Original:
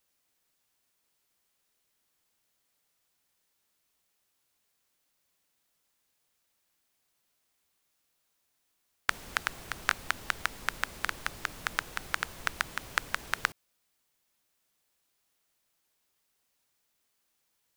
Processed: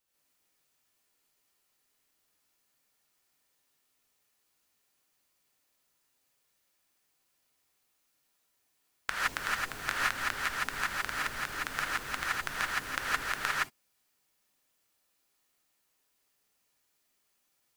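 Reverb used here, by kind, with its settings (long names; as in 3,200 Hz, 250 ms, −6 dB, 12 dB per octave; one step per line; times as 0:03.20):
reverb whose tail is shaped and stops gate 190 ms rising, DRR −7.5 dB
level −6.5 dB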